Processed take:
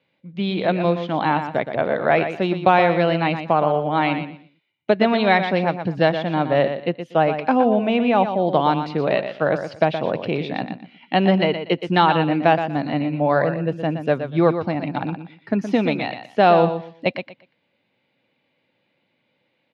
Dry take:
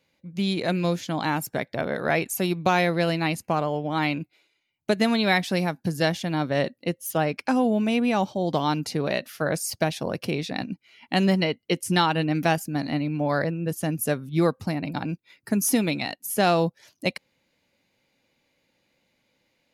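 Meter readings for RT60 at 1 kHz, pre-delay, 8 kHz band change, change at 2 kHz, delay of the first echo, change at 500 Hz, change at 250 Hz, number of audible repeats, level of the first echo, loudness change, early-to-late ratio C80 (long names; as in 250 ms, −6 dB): no reverb audible, no reverb audible, below −20 dB, +3.5 dB, 120 ms, +7.0 dB, +3.0 dB, 2, −9.0 dB, +5.0 dB, no reverb audible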